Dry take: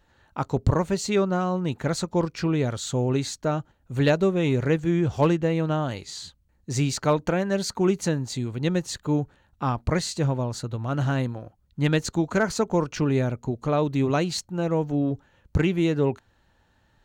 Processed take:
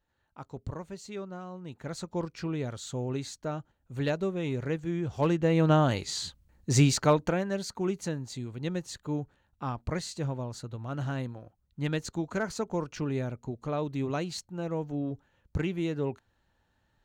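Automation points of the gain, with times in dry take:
1.59 s -16.5 dB
2.1 s -9 dB
5.1 s -9 dB
5.7 s +3 dB
6.79 s +3 dB
7.66 s -8.5 dB

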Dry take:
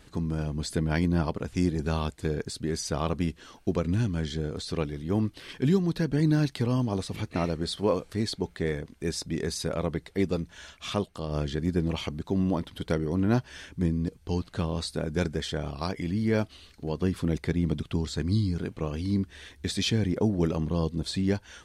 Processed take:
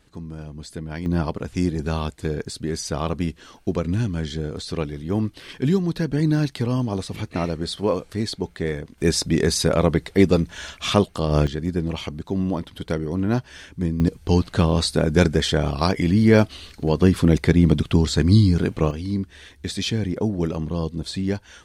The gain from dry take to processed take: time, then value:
-5 dB
from 1.06 s +3.5 dB
from 8.98 s +11 dB
from 11.47 s +2.5 dB
from 14 s +11 dB
from 18.91 s +2 dB

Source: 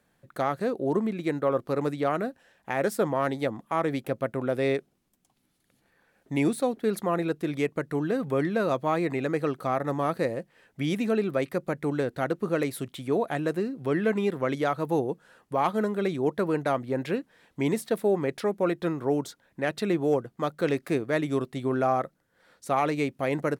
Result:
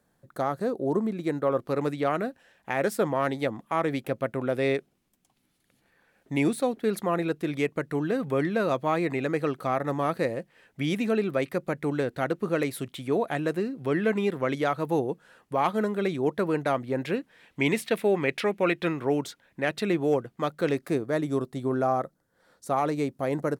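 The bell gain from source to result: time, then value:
bell 2500 Hz 1.1 oct
1.04 s -7.5 dB
1.77 s +2.5 dB
17.16 s +2.5 dB
17.78 s +13.5 dB
18.73 s +13.5 dB
19.64 s +4 dB
20.44 s +4 dB
21.1 s -8 dB

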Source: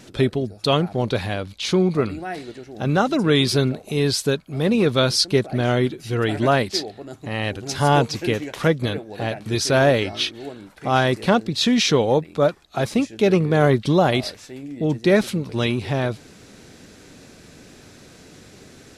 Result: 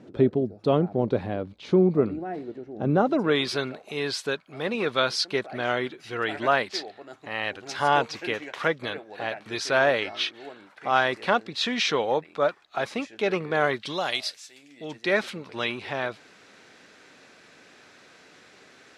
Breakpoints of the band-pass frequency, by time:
band-pass, Q 0.7
2.94 s 340 Hz
3.49 s 1500 Hz
13.57 s 1500 Hz
14.42 s 6700 Hz
15.17 s 1600 Hz

